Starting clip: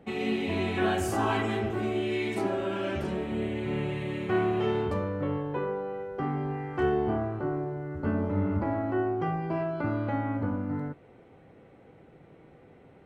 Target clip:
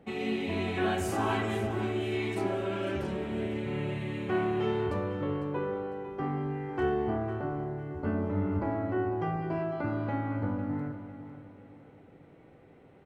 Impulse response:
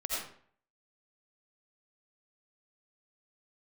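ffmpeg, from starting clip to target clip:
-filter_complex "[0:a]aecho=1:1:502|1004|1506|2008:0.237|0.0854|0.0307|0.0111,asplit=2[link_01][link_02];[1:a]atrim=start_sample=2205,adelay=110[link_03];[link_02][link_03]afir=irnorm=-1:irlink=0,volume=-20dB[link_04];[link_01][link_04]amix=inputs=2:normalize=0,volume=-2.5dB"

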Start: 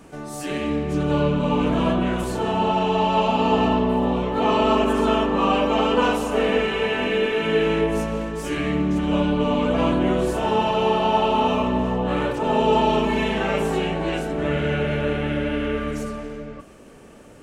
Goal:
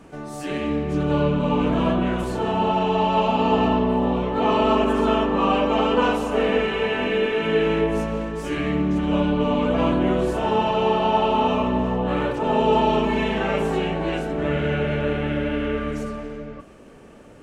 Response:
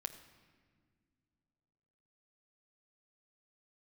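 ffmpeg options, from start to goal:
-af "highshelf=frequency=5800:gain=-8.5"

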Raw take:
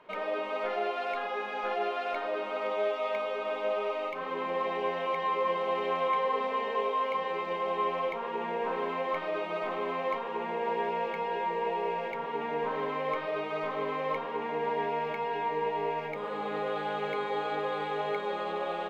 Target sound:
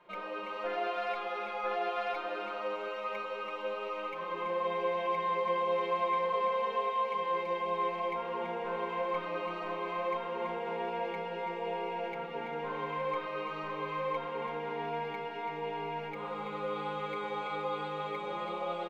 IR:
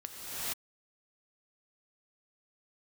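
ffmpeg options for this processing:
-filter_complex "[0:a]aecho=1:1:5.7:0.95,asplit=2[link_01][link_02];[link_02]aecho=0:1:333:0.501[link_03];[link_01][link_03]amix=inputs=2:normalize=0,volume=-7dB"

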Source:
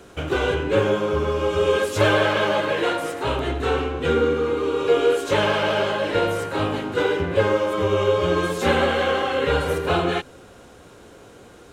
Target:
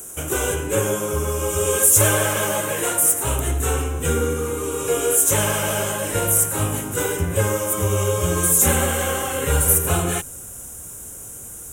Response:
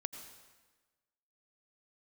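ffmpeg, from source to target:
-af "asubboost=boost=3:cutoff=180,aexciter=amount=14.5:drive=9.6:freq=6900,volume=-2dB"

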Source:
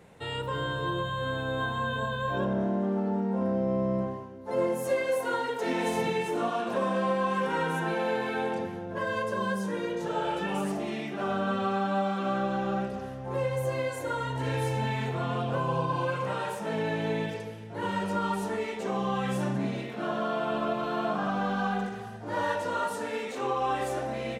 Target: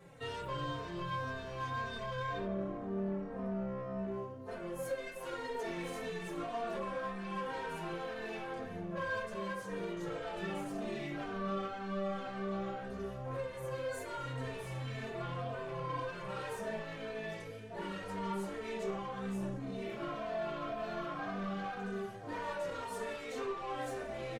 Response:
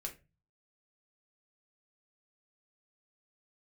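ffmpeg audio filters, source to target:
-filter_complex "[0:a]asettb=1/sr,asplit=3[link_01][link_02][link_03];[link_01]atrim=end=19.064[link_04];[link_02]atrim=start=19.06:end=19.82,asetpts=PTS-STARTPTS,afade=type=in:duration=0.004:curve=qsin,afade=type=out:start_time=0.756:duration=0.004:curve=qsin,equalizer=frequency=2500:width=0.4:gain=-5[link_05];[link_03]atrim=start=19.816[link_06];[link_04][link_05]acrossfade=duration=0.004:curve1=hsin:curve2=qsin[link_07];[link_07][link_06]acrossfade=duration=0.004:curve1=qsin:curve2=hsin,acompressor=threshold=-30dB:ratio=6,asoftclip=type=tanh:threshold=-33dB[link_08];[1:a]atrim=start_sample=2205[link_09];[link_08][link_09]afir=irnorm=-1:irlink=0,asplit=2[link_10][link_11];[link_11]adelay=3.1,afreqshift=-1.9[link_12];[link_10][link_12]amix=inputs=2:normalize=1,volume=2.5dB"

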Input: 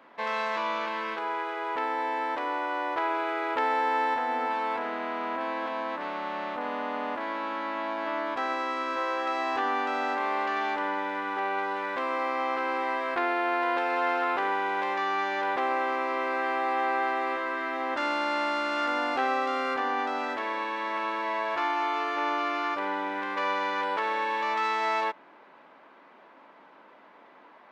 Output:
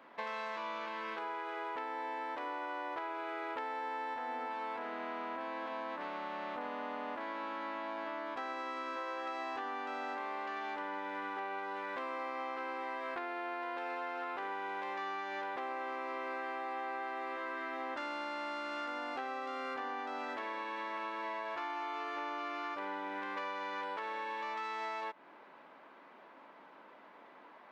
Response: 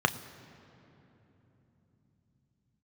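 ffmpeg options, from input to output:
-af "acompressor=threshold=-34dB:ratio=6,volume=-3dB"

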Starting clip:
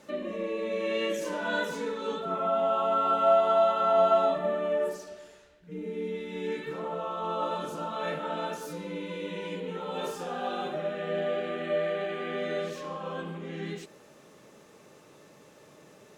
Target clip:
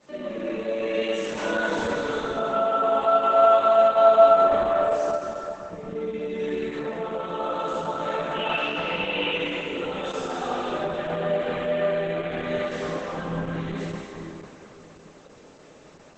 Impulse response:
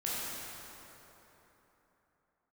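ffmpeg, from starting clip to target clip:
-filter_complex "[0:a]asettb=1/sr,asplit=3[link_01][link_02][link_03];[link_01]atrim=end=10.994[link_04];[link_02]atrim=start=10.99:end=11.8,asetpts=PTS-STARTPTS,afade=type=in:duration=0.004:curve=qsin,afade=type=out:start_time=0.806:duration=0.004:curve=qsin,equalizer=frequency=920:width=6.3:gain=13.5[link_05];[link_03]atrim=start=11.796[link_06];[link_04][link_05]acrossfade=duration=0.004:curve1=hsin:curve2=qsin[link_07];[link_07][link_06]acrossfade=duration=0.004:curve1=qsin:curve2=hsin,bandreject=frequency=60:width_type=h:width=6,bandreject=frequency=120:width_type=h:width=6,bandreject=frequency=180:width_type=h:width=6,asettb=1/sr,asplit=3[link_08][link_09][link_10];[link_08]atrim=end=5.844[link_11];[link_09]atrim=start=5.84:end=6.4,asetpts=PTS-STARTPTS,afade=type=in:duration=0.004:curve=qsin,afade=type=out:start_time=0.556:duration=0.004:curve=qsin,aeval=exprs='val(0)+0.002*(sin(2*PI*60*n/s)+sin(2*PI*2*60*n/s)/2+sin(2*PI*3*60*n/s)/3+sin(2*PI*4*60*n/s)/4+sin(2*PI*5*60*n/s)/5)':channel_layout=same[link_12];[link_10]atrim=start=6.396[link_13];[link_11][link_12]acrossfade=duration=0.004:curve1=hsin:curve2=qsin[link_14];[link_14][link_13]acrossfade=duration=0.004:curve1=qsin:curve2=hsin,asplit=3[link_15][link_16][link_17];[link_15]afade=type=out:start_time=8.34:duration=0.02[link_18];[link_16]lowpass=frequency=2800:width_type=q:width=15,afade=type=in:start_time=8.34:duration=0.02,afade=type=out:start_time=9.31:duration=0.02[link_19];[link_17]afade=type=in:start_time=9.31:duration=0.02[link_20];[link_18][link_19][link_20]amix=inputs=3:normalize=0[link_21];[1:a]atrim=start_sample=2205[link_22];[link_21][link_22]afir=irnorm=-1:irlink=0" -ar 48000 -c:a libopus -b:a 10k

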